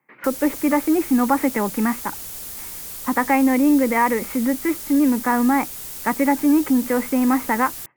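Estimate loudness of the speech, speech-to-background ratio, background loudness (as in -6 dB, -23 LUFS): -20.0 LUFS, 10.5 dB, -30.5 LUFS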